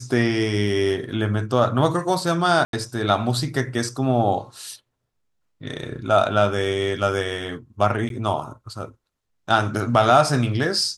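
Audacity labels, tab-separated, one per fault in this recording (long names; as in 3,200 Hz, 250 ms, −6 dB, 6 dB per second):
2.650000	2.730000	drop-out 82 ms
8.090000	8.100000	drop-out 12 ms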